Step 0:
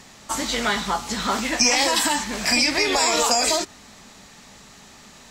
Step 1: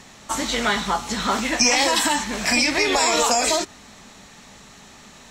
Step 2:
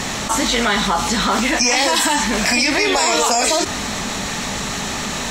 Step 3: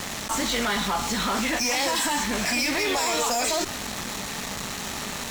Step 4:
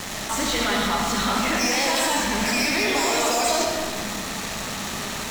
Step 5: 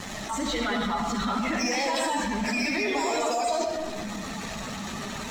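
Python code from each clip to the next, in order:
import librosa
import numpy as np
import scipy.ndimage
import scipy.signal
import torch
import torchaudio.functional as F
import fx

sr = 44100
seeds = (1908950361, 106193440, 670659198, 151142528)

y1 = fx.high_shelf(x, sr, hz=11000.0, db=-6.0)
y1 = fx.notch(y1, sr, hz=4800.0, q=13.0)
y1 = y1 * 10.0 ** (1.5 / 20.0)
y2 = fx.env_flatten(y1, sr, amount_pct=70)
y3 = fx.cheby_harmonics(y2, sr, harmonics=(3, 8), levels_db=(-15, -25), full_scale_db=-2.0)
y3 = fx.fuzz(y3, sr, gain_db=24.0, gate_db=-33.0)
y3 = y3 * 10.0 ** (-7.0 / 20.0)
y4 = fx.rev_freeverb(y3, sr, rt60_s=1.7, hf_ratio=0.6, predelay_ms=35, drr_db=0.0)
y5 = fx.spec_expand(y4, sr, power=1.6)
y5 = y5 * 10.0 ** (-4.5 / 20.0)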